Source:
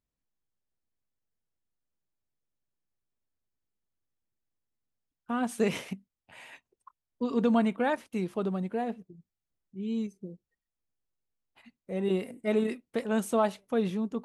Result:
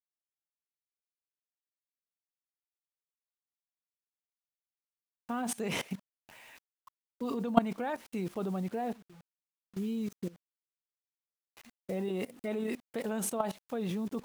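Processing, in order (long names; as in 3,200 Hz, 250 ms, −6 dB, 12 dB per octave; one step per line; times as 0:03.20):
bit reduction 9 bits
dynamic equaliser 790 Hz, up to +4 dB, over −45 dBFS, Q 3.1
output level in coarse steps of 21 dB
level +8.5 dB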